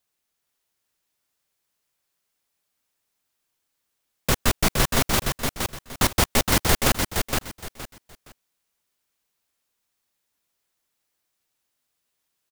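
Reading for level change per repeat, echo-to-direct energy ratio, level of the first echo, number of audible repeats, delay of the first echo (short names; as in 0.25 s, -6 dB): -12.5 dB, -4.0 dB, -4.5 dB, 3, 0.467 s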